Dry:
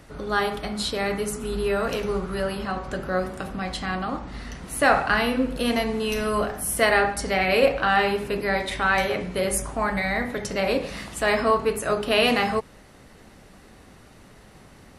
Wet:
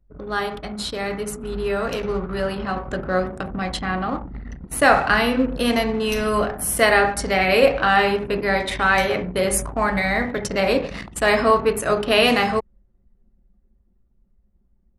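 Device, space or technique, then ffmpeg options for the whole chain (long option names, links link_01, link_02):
voice memo with heavy noise removal: -filter_complex "[0:a]asettb=1/sr,asplit=3[link_01][link_02][link_03];[link_01]atrim=end=3.814[link_04];[link_02]atrim=start=3.81:end=4.52,asetpts=PTS-STARTPTS,afade=type=in:duration=0.004:curve=qsin,afade=type=out:start_time=0.706:duration=0.004:curve=qsin,acrossover=split=2900[link_05][link_06];[link_06]acompressor=threshold=-49dB:ratio=4:attack=1:release=60[link_07];[link_05][link_07]amix=inputs=2:normalize=0[link_08];[link_03]atrim=start=4.516[link_09];[link_04][link_08]acrossfade=duration=0.004:curve1=hsin:curve2=qsin[link_10];[link_10][link_09]acrossfade=duration=0.004:curve1=qsin:curve2=hsin,anlmdn=6.31,dynaudnorm=framelen=280:gausssize=17:maxgain=11.5dB,volume=-1dB"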